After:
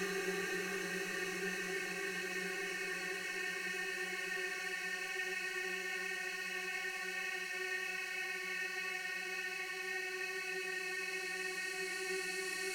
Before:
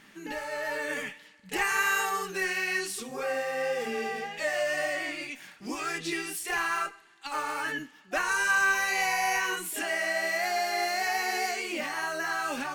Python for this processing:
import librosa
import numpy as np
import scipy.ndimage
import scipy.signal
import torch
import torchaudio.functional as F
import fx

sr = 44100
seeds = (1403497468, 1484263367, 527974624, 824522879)

y = fx.over_compress(x, sr, threshold_db=-36.0, ratio=-0.5)
y = fx.paulstretch(y, sr, seeds[0], factor=45.0, window_s=0.5, from_s=2.43)
y = fx.dmg_crackle(y, sr, seeds[1], per_s=14.0, level_db=-47.0)